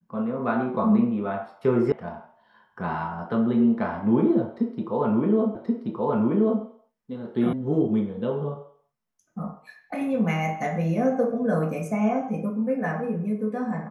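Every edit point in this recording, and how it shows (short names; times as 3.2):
1.92 sound cut off
5.55 repeat of the last 1.08 s
7.53 sound cut off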